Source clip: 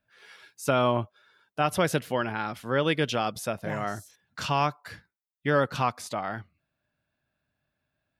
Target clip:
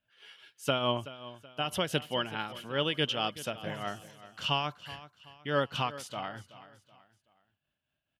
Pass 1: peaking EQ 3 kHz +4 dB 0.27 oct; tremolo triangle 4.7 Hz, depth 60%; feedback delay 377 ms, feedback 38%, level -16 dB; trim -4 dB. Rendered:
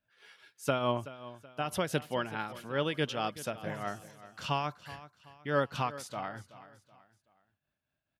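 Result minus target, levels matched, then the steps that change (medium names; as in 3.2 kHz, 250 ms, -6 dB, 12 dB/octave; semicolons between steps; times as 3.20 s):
4 kHz band -6.5 dB
change: peaking EQ 3 kHz +16 dB 0.27 oct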